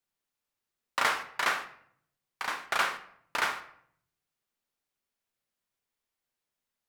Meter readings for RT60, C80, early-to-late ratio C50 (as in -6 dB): 0.65 s, 15.0 dB, 11.5 dB